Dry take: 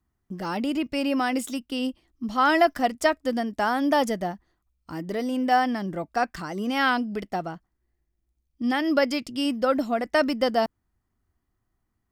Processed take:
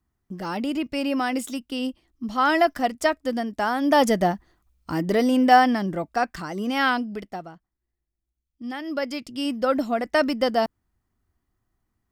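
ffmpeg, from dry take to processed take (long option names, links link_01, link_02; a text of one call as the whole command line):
ffmpeg -i in.wav -af "volume=17dB,afade=type=in:start_time=3.81:duration=0.42:silence=0.398107,afade=type=out:start_time=5.15:duration=1.05:silence=0.446684,afade=type=out:start_time=6.86:duration=0.64:silence=0.354813,afade=type=in:start_time=8.85:duration=0.91:silence=0.354813" out.wav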